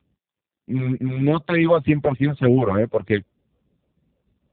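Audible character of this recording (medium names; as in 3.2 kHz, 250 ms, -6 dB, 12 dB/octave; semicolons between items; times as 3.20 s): phasing stages 12, 3.3 Hz, lowest notch 260–1200 Hz; AMR-NB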